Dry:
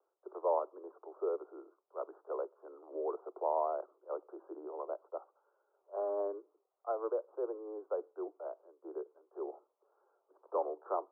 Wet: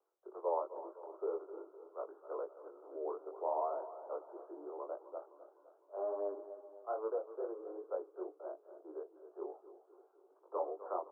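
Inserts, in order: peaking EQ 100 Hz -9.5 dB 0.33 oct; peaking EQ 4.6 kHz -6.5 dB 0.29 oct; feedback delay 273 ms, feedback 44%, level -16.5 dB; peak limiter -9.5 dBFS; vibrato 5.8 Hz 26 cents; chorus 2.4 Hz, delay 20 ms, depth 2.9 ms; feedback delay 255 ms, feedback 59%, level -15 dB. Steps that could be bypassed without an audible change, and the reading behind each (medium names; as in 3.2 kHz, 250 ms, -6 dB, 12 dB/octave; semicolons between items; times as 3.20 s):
peaking EQ 100 Hz: input has nothing below 290 Hz; peaking EQ 4.6 kHz: input has nothing above 1.4 kHz; peak limiter -9.5 dBFS: peak at its input -20.5 dBFS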